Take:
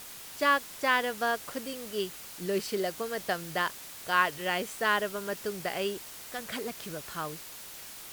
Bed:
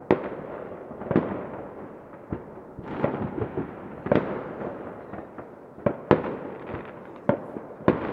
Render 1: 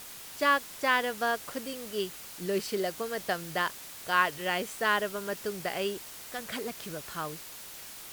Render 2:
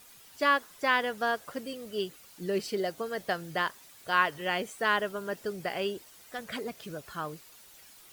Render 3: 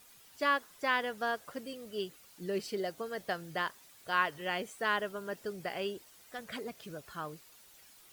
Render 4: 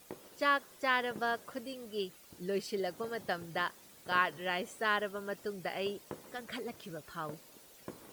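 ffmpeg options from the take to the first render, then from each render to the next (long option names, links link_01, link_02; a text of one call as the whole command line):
ffmpeg -i in.wav -af anull out.wav
ffmpeg -i in.wav -af "afftdn=noise_reduction=11:noise_floor=-45" out.wav
ffmpeg -i in.wav -af "volume=-4.5dB" out.wav
ffmpeg -i in.wav -i bed.wav -filter_complex "[1:a]volume=-26dB[link_01];[0:a][link_01]amix=inputs=2:normalize=0" out.wav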